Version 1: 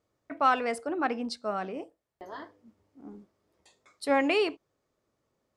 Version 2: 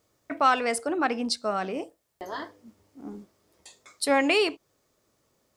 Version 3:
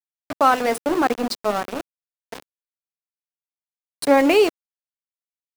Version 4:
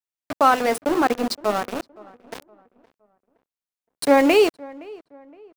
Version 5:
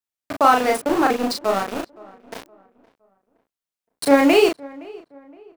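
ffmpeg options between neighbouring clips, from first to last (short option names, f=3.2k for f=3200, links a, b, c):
-filter_complex "[0:a]highshelf=f=3.8k:g=10.5,asplit=2[a][b];[b]acompressor=threshold=-34dB:ratio=6,volume=0dB[c];[a][c]amix=inputs=2:normalize=0"
-af "aeval=exprs='val(0)*gte(abs(val(0)),0.0447)':c=same,equalizer=f=380:t=o:w=3:g=9.5"
-filter_complex "[0:a]asplit=2[a][b];[b]adelay=517,lowpass=f=1.7k:p=1,volume=-22dB,asplit=2[c][d];[d]adelay=517,lowpass=f=1.7k:p=1,volume=0.39,asplit=2[e][f];[f]adelay=517,lowpass=f=1.7k:p=1,volume=0.39[g];[a][c][e][g]amix=inputs=4:normalize=0"
-filter_complex "[0:a]asplit=2[a][b];[b]adelay=36,volume=-3dB[c];[a][c]amix=inputs=2:normalize=0"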